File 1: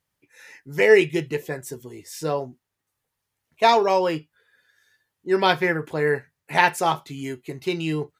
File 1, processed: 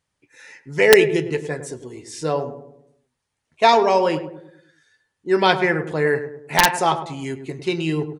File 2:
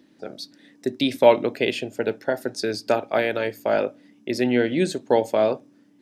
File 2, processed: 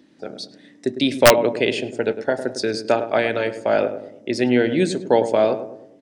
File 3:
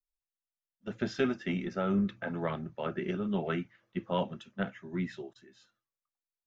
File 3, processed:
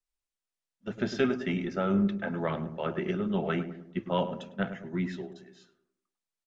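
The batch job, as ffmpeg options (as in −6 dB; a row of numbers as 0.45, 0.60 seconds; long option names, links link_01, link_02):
-filter_complex "[0:a]asplit=2[link_01][link_02];[link_02]adelay=104,lowpass=frequency=980:poles=1,volume=-9dB,asplit=2[link_03][link_04];[link_04]adelay=104,lowpass=frequency=980:poles=1,volume=0.5,asplit=2[link_05][link_06];[link_06]adelay=104,lowpass=frequency=980:poles=1,volume=0.5,asplit=2[link_07][link_08];[link_08]adelay=104,lowpass=frequency=980:poles=1,volume=0.5,asplit=2[link_09][link_10];[link_10]adelay=104,lowpass=frequency=980:poles=1,volume=0.5,asplit=2[link_11][link_12];[link_12]adelay=104,lowpass=frequency=980:poles=1,volume=0.5[link_13];[link_01][link_03][link_05][link_07][link_09][link_11][link_13]amix=inputs=7:normalize=0,aresample=22050,aresample=44100,aeval=exprs='(mod(1.58*val(0)+1,2)-1)/1.58':channel_layout=same,volume=2.5dB"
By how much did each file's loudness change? 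+2.5, +3.0, +3.0 LU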